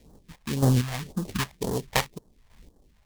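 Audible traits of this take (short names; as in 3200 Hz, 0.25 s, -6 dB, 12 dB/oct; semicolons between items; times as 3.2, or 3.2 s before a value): aliases and images of a low sample rate 1400 Hz, jitter 20%; phasing stages 2, 1.9 Hz, lowest notch 310–2300 Hz; chopped level 1.6 Hz, depth 60%, duty 30%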